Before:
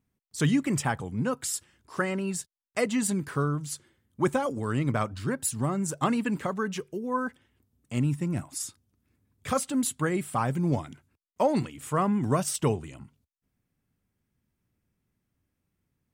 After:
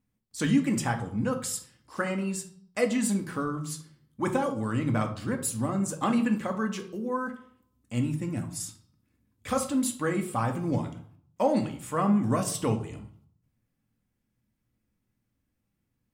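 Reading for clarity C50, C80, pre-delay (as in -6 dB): 11.0 dB, 15.0 dB, 4 ms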